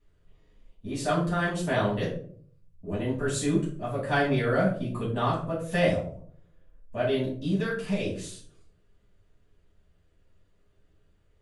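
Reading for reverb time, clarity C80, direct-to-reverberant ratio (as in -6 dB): 0.55 s, 10.5 dB, -7.5 dB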